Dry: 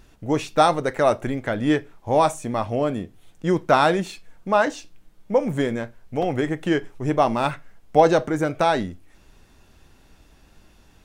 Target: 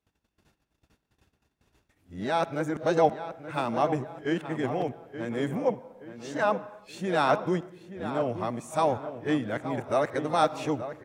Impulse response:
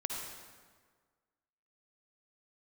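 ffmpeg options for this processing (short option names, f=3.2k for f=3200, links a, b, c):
-filter_complex "[0:a]areverse,agate=range=-21dB:threshold=-49dB:ratio=16:detection=peak,highpass=69,asplit=2[a][b];[b]adelay=875,lowpass=f=2.6k:p=1,volume=-11dB,asplit=2[c][d];[d]adelay=875,lowpass=f=2.6k:p=1,volume=0.43,asplit=2[e][f];[f]adelay=875,lowpass=f=2.6k:p=1,volume=0.43,asplit=2[g][h];[h]adelay=875,lowpass=f=2.6k:p=1,volume=0.43[i];[a][c][e][g][i]amix=inputs=5:normalize=0,asplit=2[j][k];[1:a]atrim=start_sample=2205,afade=t=out:st=0.41:d=0.01,atrim=end_sample=18522,lowpass=4.7k[l];[k][l]afir=irnorm=-1:irlink=0,volume=-16dB[m];[j][m]amix=inputs=2:normalize=0,volume=-8dB"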